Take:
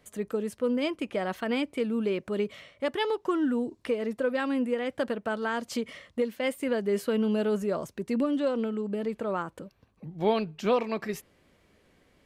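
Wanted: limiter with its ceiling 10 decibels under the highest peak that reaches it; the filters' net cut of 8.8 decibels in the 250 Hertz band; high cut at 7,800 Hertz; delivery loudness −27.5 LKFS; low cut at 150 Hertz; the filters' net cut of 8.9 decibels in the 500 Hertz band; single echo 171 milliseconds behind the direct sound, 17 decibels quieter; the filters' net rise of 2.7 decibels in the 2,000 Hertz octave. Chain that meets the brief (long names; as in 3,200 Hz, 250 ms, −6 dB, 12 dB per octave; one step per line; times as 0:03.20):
high-pass filter 150 Hz
low-pass filter 7,800 Hz
parametric band 250 Hz −7.5 dB
parametric band 500 Hz −8.5 dB
parametric band 2,000 Hz +4 dB
brickwall limiter −25.5 dBFS
single-tap delay 171 ms −17 dB
level +10 dB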